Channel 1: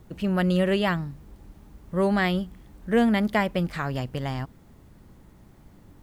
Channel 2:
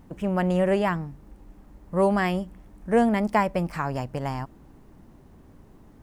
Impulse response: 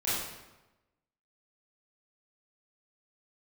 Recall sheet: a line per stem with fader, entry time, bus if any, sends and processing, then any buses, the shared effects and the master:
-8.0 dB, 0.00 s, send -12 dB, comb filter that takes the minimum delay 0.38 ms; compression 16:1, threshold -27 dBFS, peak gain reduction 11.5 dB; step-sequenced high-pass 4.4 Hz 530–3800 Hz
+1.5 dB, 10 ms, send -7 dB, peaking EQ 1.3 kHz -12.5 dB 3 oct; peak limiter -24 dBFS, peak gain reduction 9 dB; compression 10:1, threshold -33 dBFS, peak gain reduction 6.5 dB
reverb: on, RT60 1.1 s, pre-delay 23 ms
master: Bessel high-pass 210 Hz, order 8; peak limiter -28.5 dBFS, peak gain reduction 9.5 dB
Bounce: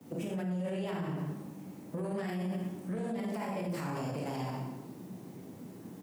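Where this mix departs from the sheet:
stem 1 -8.0 dB -> -18.5 dB; reverb return +9.0 dB

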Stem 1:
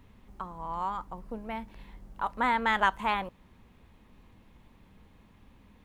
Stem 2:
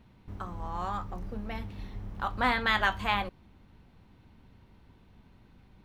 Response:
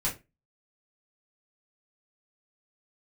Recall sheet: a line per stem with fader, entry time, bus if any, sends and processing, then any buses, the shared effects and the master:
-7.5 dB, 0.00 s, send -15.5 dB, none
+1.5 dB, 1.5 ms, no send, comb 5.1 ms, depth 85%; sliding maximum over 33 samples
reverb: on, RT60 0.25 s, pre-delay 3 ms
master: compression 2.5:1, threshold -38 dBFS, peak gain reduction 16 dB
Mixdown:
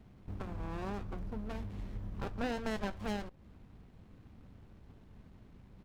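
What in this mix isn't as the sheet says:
stem 1 -7.5 dB -> -14.0 dB; stem 2: missing comb 5.1 ms, depth 85%

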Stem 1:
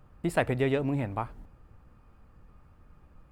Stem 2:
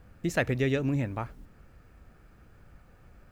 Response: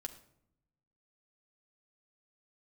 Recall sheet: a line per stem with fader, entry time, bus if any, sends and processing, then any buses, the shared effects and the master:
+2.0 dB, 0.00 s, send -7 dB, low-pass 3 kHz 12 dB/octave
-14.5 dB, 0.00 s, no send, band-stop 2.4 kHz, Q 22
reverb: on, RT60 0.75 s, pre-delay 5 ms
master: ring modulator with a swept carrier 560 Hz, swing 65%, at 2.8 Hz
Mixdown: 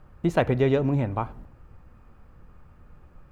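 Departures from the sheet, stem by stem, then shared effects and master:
stem 2 -14.5 dB -> -6.5 dB; master: missing ring modulator with a swept carrier 560 Hz, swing 65%, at 2.8 Hz

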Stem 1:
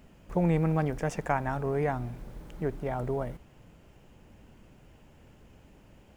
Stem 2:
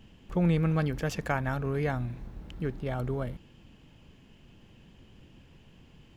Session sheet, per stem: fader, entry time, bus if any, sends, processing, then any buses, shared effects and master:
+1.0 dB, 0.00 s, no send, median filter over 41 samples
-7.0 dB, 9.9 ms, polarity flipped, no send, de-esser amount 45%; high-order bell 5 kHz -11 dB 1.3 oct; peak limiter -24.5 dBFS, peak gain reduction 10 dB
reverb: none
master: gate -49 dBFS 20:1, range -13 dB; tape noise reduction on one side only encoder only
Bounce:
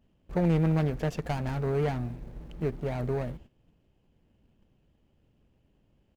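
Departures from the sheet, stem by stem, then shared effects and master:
stem 2: missing high-order bell 5 kHz -11 dB 1.3 oct; master: missing tape noise reduction on one side only encoder only

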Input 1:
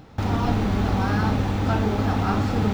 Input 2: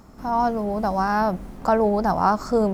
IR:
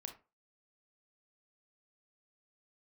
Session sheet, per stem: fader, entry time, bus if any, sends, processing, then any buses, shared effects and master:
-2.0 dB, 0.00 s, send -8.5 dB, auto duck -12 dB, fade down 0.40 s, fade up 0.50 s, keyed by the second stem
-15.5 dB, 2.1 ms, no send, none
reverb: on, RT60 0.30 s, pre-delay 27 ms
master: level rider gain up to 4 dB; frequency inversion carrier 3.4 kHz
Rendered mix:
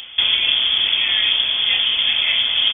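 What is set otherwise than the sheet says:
stem 1 -2.0 dB -> +10.0 dB; master: missing level rider gain up to 4 dB

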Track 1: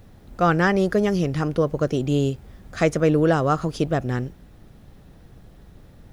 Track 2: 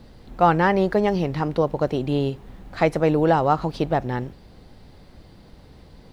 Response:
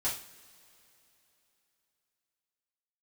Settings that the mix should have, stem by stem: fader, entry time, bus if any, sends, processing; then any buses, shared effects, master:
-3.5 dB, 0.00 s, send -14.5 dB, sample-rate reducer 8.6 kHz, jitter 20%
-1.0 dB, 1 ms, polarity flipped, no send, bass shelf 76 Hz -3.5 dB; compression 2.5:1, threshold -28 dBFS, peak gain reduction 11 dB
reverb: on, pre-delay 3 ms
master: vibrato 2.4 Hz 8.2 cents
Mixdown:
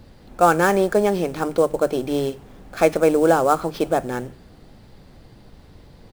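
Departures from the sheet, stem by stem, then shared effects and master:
stem 2: missing compression 2.5:1, threshold -28 dBFS, peak gain reduction 11 dB; master: missing vibrato 2.4 Hz 8.2 cents

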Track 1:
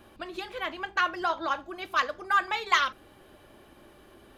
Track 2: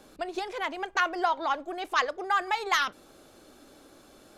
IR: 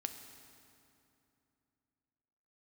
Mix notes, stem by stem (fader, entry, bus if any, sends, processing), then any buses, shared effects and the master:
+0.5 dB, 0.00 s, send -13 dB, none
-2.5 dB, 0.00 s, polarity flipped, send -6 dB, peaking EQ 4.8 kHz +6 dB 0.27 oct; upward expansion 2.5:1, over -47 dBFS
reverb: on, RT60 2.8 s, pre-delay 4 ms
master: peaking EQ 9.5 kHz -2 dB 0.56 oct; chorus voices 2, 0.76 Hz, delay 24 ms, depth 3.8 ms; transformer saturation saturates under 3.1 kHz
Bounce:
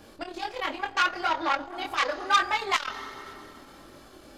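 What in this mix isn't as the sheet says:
stem 2: missing upward expansion 2.5:1, over -47 dBFS; reverb return +9.5 dB

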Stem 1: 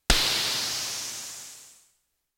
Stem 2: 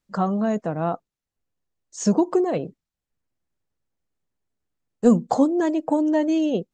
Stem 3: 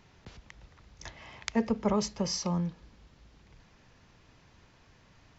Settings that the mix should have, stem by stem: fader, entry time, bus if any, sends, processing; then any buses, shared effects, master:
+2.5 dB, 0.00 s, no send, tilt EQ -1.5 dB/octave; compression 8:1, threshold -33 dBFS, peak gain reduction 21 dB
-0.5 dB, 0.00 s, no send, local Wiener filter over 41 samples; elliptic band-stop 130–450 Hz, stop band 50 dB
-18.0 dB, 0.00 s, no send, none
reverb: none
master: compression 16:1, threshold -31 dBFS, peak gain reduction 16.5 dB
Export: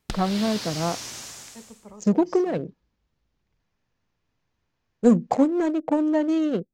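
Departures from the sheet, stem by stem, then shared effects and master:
stem 2: missing elliptic band-stop 130–450 Hz, stop band 50 dB; master: missing compression 16:1, threshold -31 dBFS, peak gain reduction 16.5 dB

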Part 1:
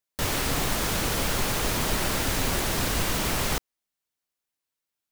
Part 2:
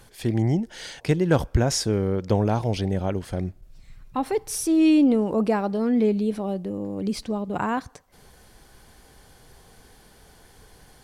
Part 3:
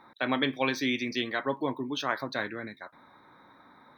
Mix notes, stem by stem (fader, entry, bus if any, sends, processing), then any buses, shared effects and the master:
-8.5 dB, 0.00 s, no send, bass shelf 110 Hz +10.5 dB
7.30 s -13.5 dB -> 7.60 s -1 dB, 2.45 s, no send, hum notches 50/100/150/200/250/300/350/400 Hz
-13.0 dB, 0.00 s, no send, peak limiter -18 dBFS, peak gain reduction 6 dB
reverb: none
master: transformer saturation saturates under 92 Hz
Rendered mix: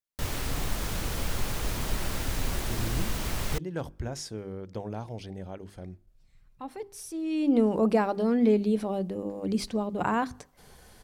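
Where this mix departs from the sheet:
stem 3: muted; master: missing transformer saturation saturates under 92 Hz

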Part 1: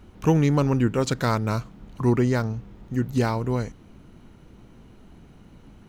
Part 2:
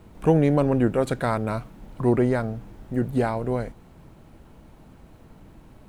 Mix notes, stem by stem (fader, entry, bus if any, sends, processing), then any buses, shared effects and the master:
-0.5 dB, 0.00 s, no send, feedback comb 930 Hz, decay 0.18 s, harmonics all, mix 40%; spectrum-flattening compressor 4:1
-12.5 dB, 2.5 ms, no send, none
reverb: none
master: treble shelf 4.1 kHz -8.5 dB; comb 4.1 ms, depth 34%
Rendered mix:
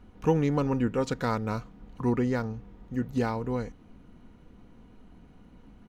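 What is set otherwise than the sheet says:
stem 1: missing spectrum-flattening compressor 4:1; stem 2 -12.5 dB -> -20.5 dB

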